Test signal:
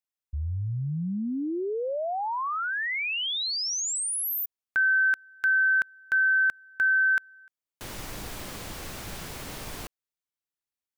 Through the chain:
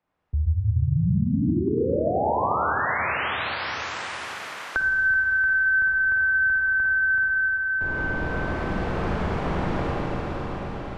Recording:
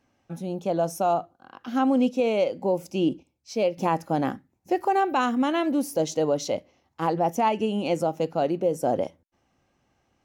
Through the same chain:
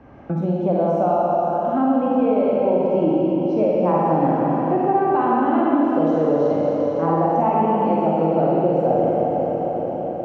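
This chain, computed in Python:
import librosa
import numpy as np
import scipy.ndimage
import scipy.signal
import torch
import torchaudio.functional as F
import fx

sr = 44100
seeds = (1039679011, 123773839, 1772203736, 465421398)

y = scipy.signal.sosfilt(scipy.signal.butter(2, 1200.0, 'lowpass', fs=sr, output='sos'), x)
y = fx.peak_eq(y, sr, hz=66.0, db=6.0, octaves=0.75)
y = fx.rider(y, sr, range_db=5, speed_s=2.0)
y = fx.rev_schroeder(y, sr, rt60_s=3.7, comb_ms=38, drr_db=-6.5)
y = fx.band_squash(y, sr, depth_pct=70)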